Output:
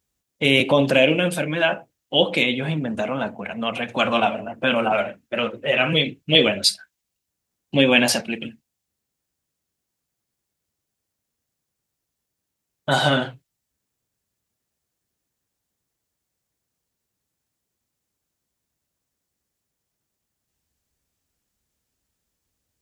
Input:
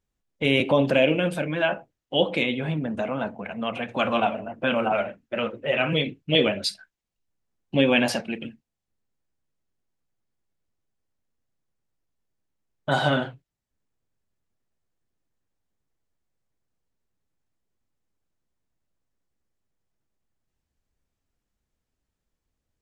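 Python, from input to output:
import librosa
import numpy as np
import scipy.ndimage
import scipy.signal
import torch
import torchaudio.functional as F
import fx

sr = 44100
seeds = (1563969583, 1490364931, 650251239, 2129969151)

y = scipy.signal.sosfilt(scipy.signal.butter(2, 50.0, 'highpass', fs=sr, output='sos'), x)
y = fx.high_shelf(y, sr, hz=3900.0, db=11.0)
y = y * librosa.db_to_amplitude(2.5)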